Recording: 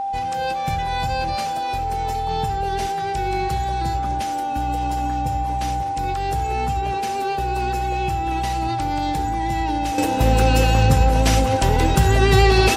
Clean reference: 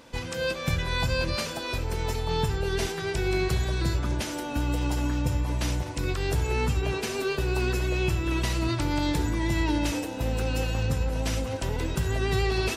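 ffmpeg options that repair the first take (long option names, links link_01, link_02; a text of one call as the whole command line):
ffmpeg -i in.wav -af "bandreject=frequency=790:width=30,asetnsamples=nb_out_samples=441:pad=0,asendcmd='9.98 volume volume -11dB',volume=0dB" out.wav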